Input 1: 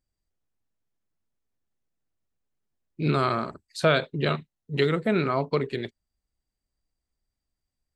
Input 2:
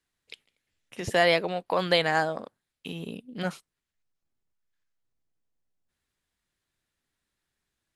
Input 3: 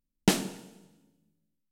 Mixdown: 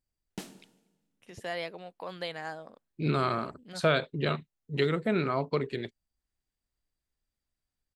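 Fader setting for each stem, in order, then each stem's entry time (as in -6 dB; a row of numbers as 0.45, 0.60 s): -4.0, -14.0, -17.5 dB; 0.00, 0.30, 0.10 s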